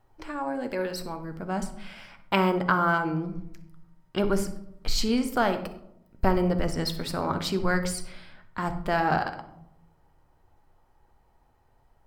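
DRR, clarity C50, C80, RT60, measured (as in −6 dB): 7.0 dB, 10.5 dB, 14.5 dB, 0.80 s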